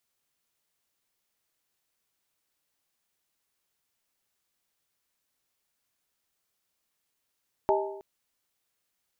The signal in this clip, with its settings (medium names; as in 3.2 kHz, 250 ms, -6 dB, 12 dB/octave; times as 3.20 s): skin hit length 0.32 s, lowest mode 395 Hz, modes 4, decay 0.91 s, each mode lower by 1 dB, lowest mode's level -22.5 dB